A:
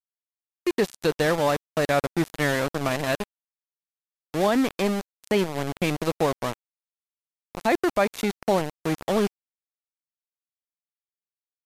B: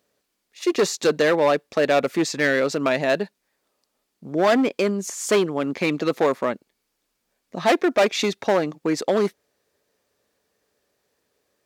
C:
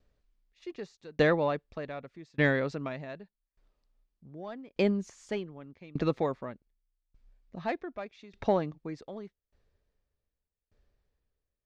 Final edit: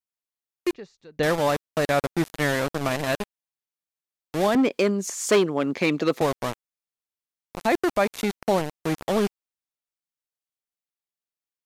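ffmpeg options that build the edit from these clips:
ffmpeg -i take0.wav -i take1.wav -i take2.wav -filter_complex "[0:a]asplit=3[link_01][link_02][link_03];[link_01]atrim=end=0.732[link_04];[2:a]atrim=start=0.728:end=1.232[link_05];[link_02]atrim=start=1.228:end=4.552[link_06];[1:a]atrim=start=4.548:end=6.212[link_07];[link_03]atrim=start=6.208[link_08];[link_04][link_05]acrossfade=duration=0.004:curve1=hsin:curve2=hsin[link_09];[link_09][link_06]acrossfade=duration=0.004:curve1=hsin:curve2=hsin[link_10];[link_10][link_07]acrossfade=duration=0.004:curve1=hsin:curve2=hsin[link_11];[link_11][link_08]acrossfade=duration=0.004:curve1=hsin:curve2=hsin" out.wav

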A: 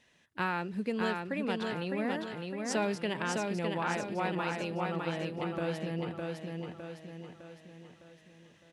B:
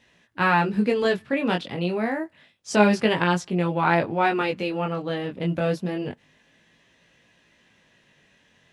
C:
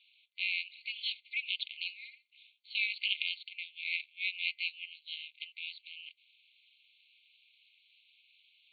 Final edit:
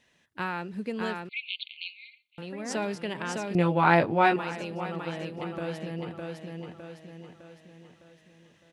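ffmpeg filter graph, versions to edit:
ffmpeg -i take0.wav -i take1.wav -i take2.wav -filter_complex "[0:a]asplit=3[link_01][link_02][link_03];[link_01]atrim=end=1.292[link_04];[2:a]atrim=start=1.288:end=2.382[link_05];[link_02]atrim=start=2.378:end=3.552[link_06];[1:a]atrim=start=3.548:end=4.362[link_07];[link_03]atrim=start=4.358[link_08];[link_04][link_05]acrossfade=duration=0.004:curve1=hsin:curve2=hsin[link_09];[link_09][link_06]acrossfade=duration=0.004:curve1=hsin:curve2=hsin[link_10];[link_10][link_07]acrossfade=duration=0.004:curve1=hsin:curve2=hsin[link_11];[link_11][link_08]acrossfade=duration=0.004:curve1=hsin:curve2=hsin" out.wav

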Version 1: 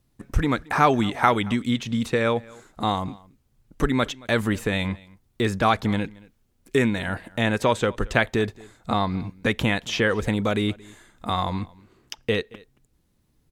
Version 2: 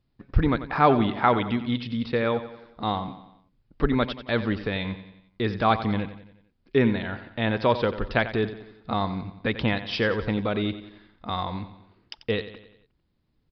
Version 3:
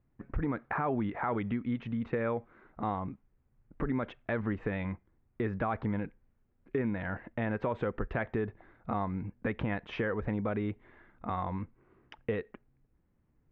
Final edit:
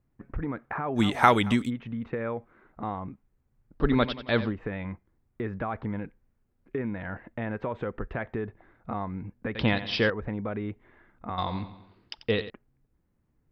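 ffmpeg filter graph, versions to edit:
ffmpeg -i take0.wav -i take1.wav -i take2.wav -filter_complex "[1:a]asplit=3[link_01][link_02][link_03];[2:a]asplit=5[link_04][link_05][link_06][link_07][link_08];[link_04]atrim=end=1.01[link_09];[0:a]atrim=start=0.95:end=1.71[link_10];[link_05]atrim=start=1.65:end=3.87[link_11];[link_01]atrim=start=3.77:end=4.53[link_12];[link_06]atrim=start=4.43:end=9.552[link_13];[link_02]atrim=start=9.548:end=10.102[link_14];[link_07]atrim=start=10.098:end=11.382[link_15];[link_03]atrim=start=11.378:end=12.502[link_16];[link_08]atrim=start=12.498[link_17];[link_09][link_10]acrossfade=duration=0.06:curve1=tri:curve2=tri[link_18];[link_18][link_11]acrossfade=duration=0.06:curve1=tri:curve2=tri[link_19];[link_19][link_12]acrossfade=duration=0.1:curve1=tri:curve2=tri[link_20];[link_20][link_13]acrossfade=duration=0.1:curve1=tri:curve2=tri[link_21];[link_21][link_14]acrossfade=duration=0.004:curve1=hsin:curve2=hsin[link_22];[link_22][link_15]acrossfade=duration=0.004:curve1=hsin:curve2=hsin[link_23];[link_23][link_16]acrossfade=duration=0.004:curve1=hsin:curve2=hsin[link_24];[link_24][link_17]acrossfade=duration=0.004:curve1=hsin:curve2=hsin" out.wav

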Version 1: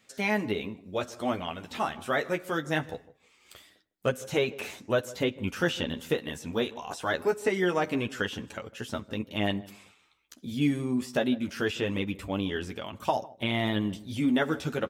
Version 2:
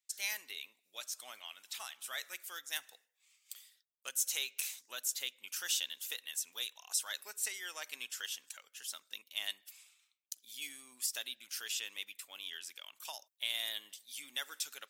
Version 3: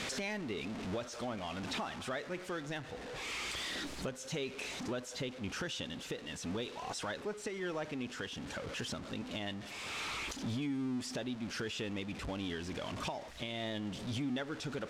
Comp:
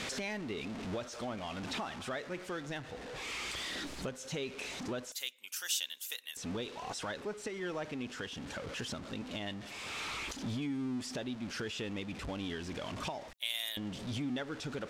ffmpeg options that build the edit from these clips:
ffmpeg -i take0.wav -i take1.wav -i take2.wav -filter_complex "[1:a]asplit=2[link_01][link_02];[2:a]asplit=3[link_03][link_04][link_05];[link_03]atrim=end=5.122[link_06];[link_01]atrim=start=5.118:end=6.372[link_07];[link_04]atrim=start=6.368:end=13.332[link_08];[link_02]atrim=start=13.328:end=13.772[link_09];[link_05]atrim=start=13.768[link_10];[link_06][link_07]acrossfade=duration=0.004:curve1=hsin:curve2=hsin[link_11];[link_11][link_08]acrossfade=duration=0.004:curve1=hsin:curve2=hsin[link_12];[link_12][link_09]acrossfade=duration=0.004:curve1=hsin:curve2=hsin[link_13];[link_13][link_10]acrossfade=duration=0.004:curve1=hsin:curve2=hsin" out.wav

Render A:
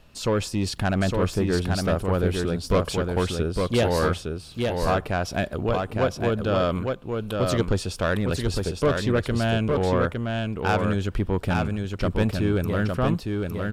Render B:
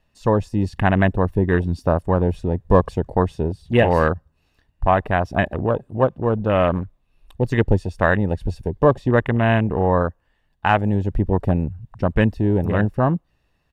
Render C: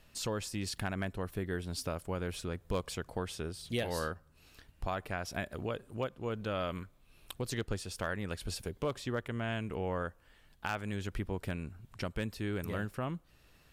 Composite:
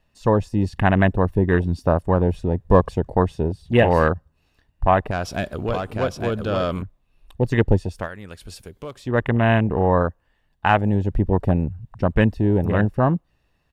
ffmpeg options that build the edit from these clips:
ffmpeg -i take0.wav -i take1.wav -i take2.wav -filter_complex "[1:a]asplit=3[link_01][link_02][link_03];[link_01]atrim=end=5.112[link_04];[0:a]atrim=start=5.108:end=6.822[link_05];[link_02]atrim=start=6.818:end=8.09[link_06];[2:a]atrim=start=7.85:end=9.25[link_07];[link_03]atrim=start=9.01[link_08];[link_04][link_05]acrossfade=duration=0.004:curve1=hsin:curve2=hsin[link_09];[link_09][link_06]acrossfade=duration=0.004:curve1=hsin:curve2=hsin[link_10];[link_10][link_07]acrossfade=duration=0.24:curve1=tri:curve2=tri[link_11];[link_11][link_08]acrossfade=duration=0.24:curve1=tri:curve2=tri" out.wav

